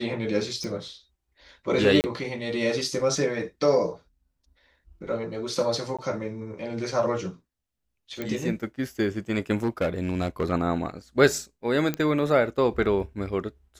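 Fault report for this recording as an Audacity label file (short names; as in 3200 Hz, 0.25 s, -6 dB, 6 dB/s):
0.640000	0.640000	pop
2.010000	2.040000	gap 29 ms
5.970000	5.990000	gap 16 ms
8.220000	8.220000	pop -17 dBFS
9.560000	10.520000	clipped -20 dBFS
11.940000	11.940000	pop -13 dBFS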